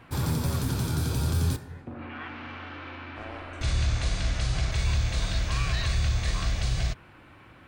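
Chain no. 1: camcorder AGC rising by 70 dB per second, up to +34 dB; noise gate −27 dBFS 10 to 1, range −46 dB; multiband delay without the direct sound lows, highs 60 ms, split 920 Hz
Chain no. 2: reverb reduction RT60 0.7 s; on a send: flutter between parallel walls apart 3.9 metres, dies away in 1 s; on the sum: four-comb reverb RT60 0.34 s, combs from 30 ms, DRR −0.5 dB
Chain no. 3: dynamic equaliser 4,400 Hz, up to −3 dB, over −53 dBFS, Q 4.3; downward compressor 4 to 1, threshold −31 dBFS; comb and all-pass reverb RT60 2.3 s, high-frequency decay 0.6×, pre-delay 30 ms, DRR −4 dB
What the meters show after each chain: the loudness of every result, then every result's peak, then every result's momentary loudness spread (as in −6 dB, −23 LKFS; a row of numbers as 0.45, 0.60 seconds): −29.0, −25.0, −31.5 LKFS; −15.5, −9.0, −16.5 dBFS; 7, 10, 5 LU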